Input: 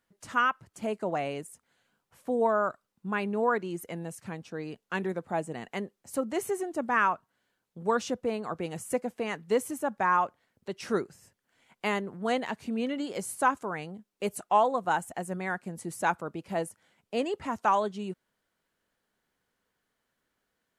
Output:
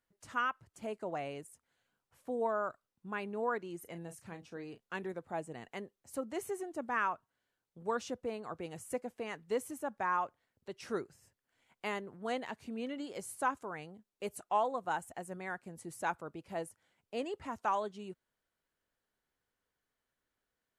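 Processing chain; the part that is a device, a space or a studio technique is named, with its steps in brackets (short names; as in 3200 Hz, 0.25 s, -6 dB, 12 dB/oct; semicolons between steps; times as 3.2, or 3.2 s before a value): 3.79–4.96 doubler 35 ms -10 dB; low shelf boost with a cut just above (low shelf 110 Hz +5.5 dB; bell 190 Hz -5 dB 0.62 oct); gain -8 dB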